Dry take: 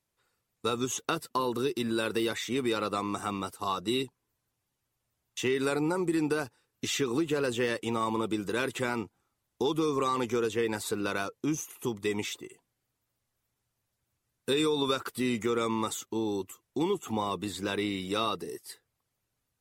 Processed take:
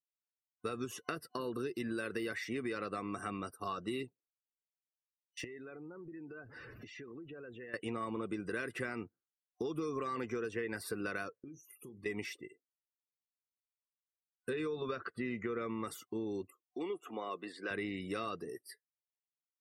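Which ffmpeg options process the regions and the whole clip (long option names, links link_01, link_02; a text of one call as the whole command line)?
ffmpeg -i in.wav -filter_complex "[0:a]asettb=1/sr,asplit=3[link_01][link_02][link_03];[link_01]atrim=end=5.444[link_04];[link_02]atrim=start=5.44:end=7.74,asetpts=PTS-STARTPTS,afade=type=in:duration=0.004:curve=qsin,afade=type=out:start_time=2.296:duration=0.004:curve=qsin,aeval=exprs='val(0)+0.5*0.0126*sgn(val(0))':channel_layout=same,lowpass=frequency=3900:poles=1,acompressor=threshold=-44dB:ratio=4:attack=3.2:release=140:knee=1:detection=peak[link_05];[link_03]atrim=start=7.736[link_06];[link_04][link_05]acrossfade=duration=0.004:curve1=hsin:curve2=qsin[link_07];[link_07][link_06]acrossfade=duration=0.004:curve1=qsin:curve2=hsin,asettb=1/sr,asplit=3[link_08][link_09][link_10];[link_08]atrim=end=11.434[link_11];[link_09]atrim=start=11.43:end=12.06,asetpts=PTS-STARTPTS,afade=type=in:duration=0.004:curve=qsin,afade=type=out:start_time=0.626:duration=0.004:curve=qsin,acompressor=threshold=-41dB:ratio=16:attack=3.2:release=140:knee=1:detection=peak,asplit=2[link_12][link_13];[link_13]adelay=37,volume=-13dB[link_14];[link_12][link_14]amix=inputs=2:normalize=0,atrim=end_sample=27783[link_15];[link_10]atrim=start=12.056[link_16];[link_11][link_15]acrossfade=duration=0.004:curve1=hsin:curve2=qsin[link_17];[link_17][link_16]acrossfade=duration=0.004:curve1=qsin:curve2=hsin,asettb=1/sr,asplit=3[link_18][link_19][link_20];[link_18]atrim=end=14.494[link_21];[link_19]atrim=start=14.49:end=15.84,asetpts=PTS-STARTPTS,afade=type=in:duration=0.004:curve=qsin,afade=type=out:start_time=1.346:duration=0.004:curve=qsin,aemphasis=mode=reproduction:type=50fm,bandreject=frequency=280:width=8.7[link_22];[link_20]atrim=start=15.836[link_23];[link_21][link_22]acrossfade=duration=0.004:curve1=hsin:curve2=qsin[link_24];[link_24][link_23]acrossfade=duration=0.004:curve1=qsin:curve2=hsin,asettb=1/sr,asplit=3[link_25][link_26][link_27];[link_25]atrim=end=16.504[link_28];[link_26]atrim=start=16.5:end=17.71,asetpts=PTS-STARTPTS,afade=type=in:duration=0.004:curve=qsin,afade=type=out:start_time=1.206:duration=0.004:curve=qsin,highpass=380,adynamicequalizer=threshold=0.00224:dfrequency=4600:dqfactor=0.7:tfrequency=4600:tqfactor=0.7:attack=5:release=100:ratio=0.375:range=3:mode=cutabove:tftype=highshelf[link_29];[link_27]atrim=start=17.706[link_30];[link_28][link_29]acrossfade=duration=0.004:curve1=hsin:curve2=qsin[link_31];[link_31][link_30]acrossfade=duration=0.004:curve1=qsin:curve2=hsin,afftdn=noise_reduction=33:noise_floor=-50,superequalizer=9b=0.355:11b=2:13b=0.355:15b=0.251,acompressor=threshold=-29dB:ratio=6,volume=-5dB" out.wav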